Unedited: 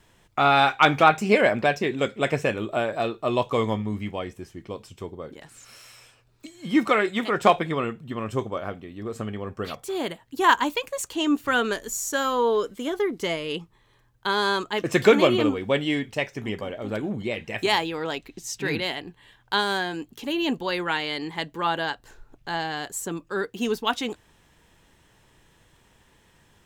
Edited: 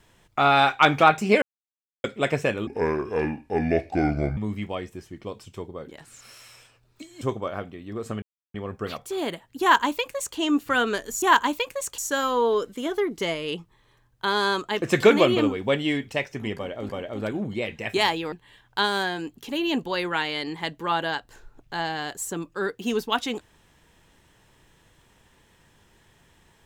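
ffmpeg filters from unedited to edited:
-filter_complex "[0:a]asplit=11[s0][s1][s2][s3][s4][s5][s6][s7][s8][s9][s10];[s0]atrim=end=1.42,asetpts=PTS-STARTPTS,afade=t=out:st=1.416:d=0.004:c=hsin[s11];[s1]atrim=start=1.42:end=2.04,asetpts=PTS-STARTPTS,volume=0[s12];[s2]atrim=start=2.04:end=2.674,asetpts=PTS-STARTPTS,afade=t=in:d=0.004:c=hsin[s13];[s3]atrim=start=2.67:end=3.81,asetpts=PTS-STARTPTS,asetrate=29547,aresample=44100[s14];[s4]atrim=start=3.806:end=6.652[s15];[s5]atrim=start=8.308:end=9.32,asetpts=PTS-STARTPTS,afade=t=out:st=1.008:d=0.004:c=hsin,apad=pad_dur=0.32[s16];[s6]atrim=start=9.32:end=12.002,asetpts=PTS-STARTPTS,afade=t=in:d=0.004:c=hsin[s17];[s7]atrim=start=10.388:end=11.152[s18];[s8]atrim=start=11.998:end=16.912[s19];[s9]atrim=start=16.578:end=18.012[s20];[s10]atrim=start=19.068[s21];[s11][s12][s13]concat=n=3:v=0:a=1[s22];[s22][s14]acrossfade=d=0.004:c1=hsin:c2=hsin[s23];[s23][s15]acrossfade=d=0.004:c1=hsin:c2=hsin[s24];[s16][s17]concat=n=2:v=0:a=1[s25];[s24][s25]acrossfade=d=0.004:c1=hsin:c2=hsin[s26];[s26][s18]acrossfade=d=0.004:c1=hsin:c2=hsin[s27];[s27][s19]acrossfade=d=0.004:c1=hsin:c2=hsin[s28];[s28][s20]acrossfade=d=0.004:c1=hsin:c2=hsin[s29];[s29][s21]acrossfade=d=0.004:c1=hsin:c2=hsin"

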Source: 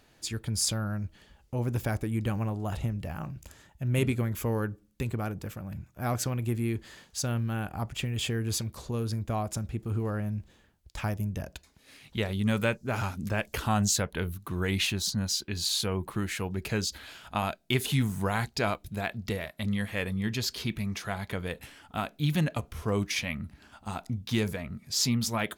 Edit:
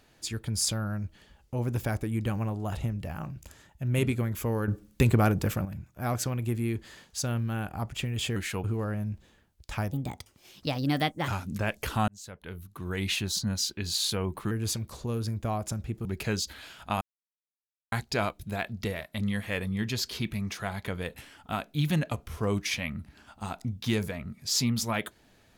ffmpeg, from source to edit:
-filter_complex "[0:a]asplit=12[s0][s1][s2][s3][s4][s5][s6][s7][s8][s9][s10][s11];[s0]atrim=end=4.682[s12];[s1]atrim=start=4.678:end=5.652,asetpts=PTS-STARTPTS,volume=3.16[s13];[s2]atrim=start=5.648:end=8.362[s14];[s3]atrim=start=16.218:end=16.502[s15];[s4]atrim=start=9.898:end=11.184[s16];[s5]atrim=start=11.18:end=12.99,asetpts=PTS-STARTPTS,asetrate=58653,aresample=44100[s17];[s6]atrim=start=12.986:end=13.79,asetpts=PTS-STARTPTS,afade=t=out:st=0.8:d=0.004:c=hsin[s18];[s7]atrim=start=13.79:end=16.222,asetpts=PTS-STARTPTS,afade=t=in:d=1.25[s19];[s8]atrim=start=8.358:end=9.902[s20];[s9]atrim=start=16.498:end=17.46,asetpts=PTS-STARTPTS,afade=t=out:st=0.958:d=0.004:c=hsin[s21];[s10]atrim=start=17.46:end=18.37,asetpts=PTS-STARTPTS,volume=0[s22];[s11]atrim=start=18.37,asetpts=PTS-STARTPTS,afade=t=in:d=0.004:c=hsin[s23];[s12][s13]acrossfade=d=0.004:c1=hsin:c2=hsin[s24];[s24][s14]acrossfade=d=0.004:c1=hsin:c2=hsin[s25];[s25][s15]acrossfade=d=0.004:c1=hsin:c2=hsin[s26];[s26][s16]acrossfade=d=0.004:c1=hsin:c2=hsin[s27];[s27][s17]acrossfade=d=0.004:c1=hsin:c2=hsin[s28];[s18][s19]concat=n=2:v=0:a=1[s29];[s28][s29]acrossfade=d=0.004:c1=hsin:c2=hsin[s30];[s30][s20]acrossfade=d=0.004:c1=hsin:c2=hsin[s31];[s21][s22][s23]concat=n=3:v=0:a=1[s32];[s31][s32]acrossfade=d=0.004:c1=hsin:c2=hsin"

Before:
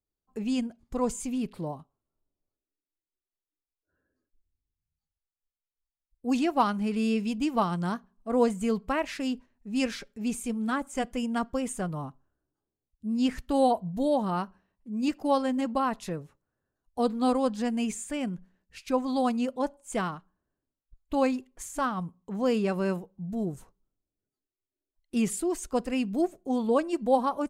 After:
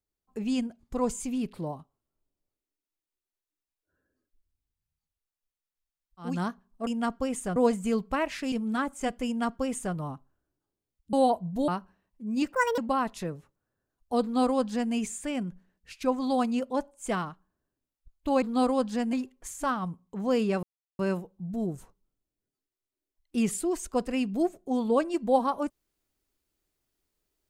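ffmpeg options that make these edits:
-filter_complex "[0:a]asplit=12[s0][s1][s2][s3][s4][s5][s6][s7][s8][s9][s10][s11];[s0]atrim=end=6.41[s12];[s1]atrim=start=7.63:end=8.332[s13];[s2]atrim=start=11.198:end=11.892[s14];[s3]atrim=start=8.328:end=9.292[s15];[s4]atrim=start=10.458:end=13.072[s16];[s5]atrim=start=13.538:end=14.092[s17];[s6]atrim=start=14.338:end=15.194[s18];[s7]atrim=start=15.19:end=15.64,asetpts=PTS-STARTPTS,asetrate=79380,aresample=44100[s19];[s8]atrim=start=15.636:end=21.282[s20];[s9]atrim=start=17.078:end=17.792[s21];[s10]atrim=start=21.278:end=22.78,asetpts=PTS-STARTPTS,afade=t=out:st=1.498:d=0.004:c=hsin,apad=pad_dur=0.36[s22];[s11]atrim=start=22.78,asetpts=PTS-STARTPTS,afade=t=in:d=0.004:c=hsin[s23];[s12][s13]acrossfade=d=0.24:c1=tri:c2=tri[s24];[s24][s14]acrossfade=d=0.004:c1=hsin:c2=hsin[s25];[s25][s15]acrossfade=d=0.004:c1=hsin:c2=hsin[s26];[s26][s16]acrossfade=d=0.004:c1=hsin:c2=hsin[s27];[s27][s17]acrossfade=d=0.004:c1=hsin:c2=hsin[s28];[s28][s18]acrossfade=d=0.004:c1=hsin:c2=hsin[s29];[s29][s19]acrossfade=d=0.004:c1=hsin:c2=hsin[s30];[s30][s20]acrossfade=d=0.004:c1=hsin:c2=hsin[s31];[s31][s21]acrossfade=d=0.004:c1=hsin:c2=hsin[s32];[s22][s23]concat=n=2:v=0:a=1[s33];[s32][s33]acrossfade=d=0.004:c1=hsin:c2=hsin"

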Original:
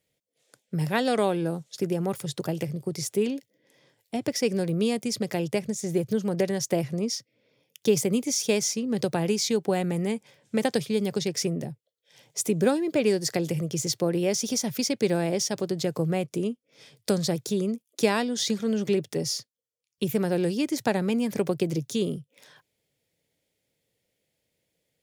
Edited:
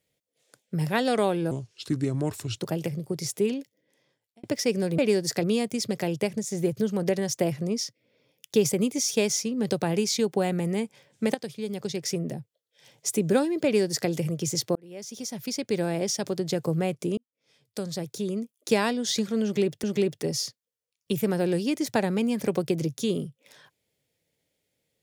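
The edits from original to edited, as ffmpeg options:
-filter_complex "[0:a]asplit=10[s0][s1][s2][s3][s4][s5][s6][s7][s8][s9];[s0]atrim=end=1.514[s10];[s1]atrim=start=1.51:end=2.34,asetpts=PTS-STARTPTS,asetrate=34398,aresample=44100[s11];[s2]atrim=start=2.336:end=4.2,asetpts=PTS-STARTPTS,afade=t=out:st=0.854:d=1.01[s12];[s3]atrim=start=4.2:end=4.752,asetpts=PTS-STARTPTS,afade=t=in:d=0.004:c=hsin[s13];[s4]atrim=start=12.958:end=13.412[s14];[s5]atrim=start=4.748:end=10.66,asetpts=PTS-STARTPTS,afade=t=out:st=5.908:d=0.004:c=hsin:silence=0.237137[s15];[s6]atrim=start=10.66:end=14.07,asetpts=PTS-STARTPTS,afade=t=in:d=1.05:silence=0.237137,afade=t=out:st=3.406:d=0.004:c=hsin[s16];[s7]atrim=start=14.07:end=16.49,asetpts=PTS-STARTPTS,afade=t=in:d=1.91:c=qsin,afade=t=out:st=2.416:d=0.004:c=hsin[s17];[s8]atrim=start=16.49:end=19.152,asetpts=PTS-STARTPTS,afade=t=in:d=1.61[s18];[s9]atrim=start=18.748[s19];[s10][s11]acrossfade=d=0.004:c1=hsin:c2=hsin[s20];[s12][s13]concat=n=2:v=0:a=1[s21];[s20][s21]acrossfade=d=0.004:c1=hsin:c2=hsin[s22];[s22][s14]acrossfade=d=0.004:c1=hsin:c2=hsin[s23];[s15][s16][s17][s18]concat=n=4:v=0:a=1[s24];[s23][s24]acrossfade=d=0.004:c1=hsin:c2=hsin[s25];[s25][s19]acrossfade=d=0.004:c1=hsin:c2=hsin"

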